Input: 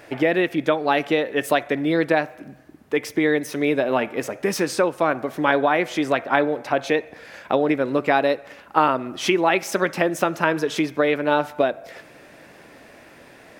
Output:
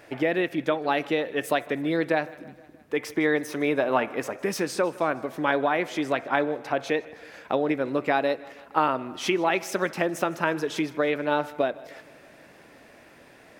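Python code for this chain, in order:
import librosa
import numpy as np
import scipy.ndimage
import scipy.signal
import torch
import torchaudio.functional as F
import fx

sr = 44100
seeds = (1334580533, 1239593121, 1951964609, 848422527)

p1 = fx.peak_eq(x, sr, hz=1100.0, db=6.0, octaves=1.4, at=(2.99, 4.45))
p2 = p1 + fx.echo_feedback(p1, sr, ms=157, feedback_pct=59, wet_db=-21.5, dry=0)
y = p2 * 10.0 ** (-5.0 / 20.0)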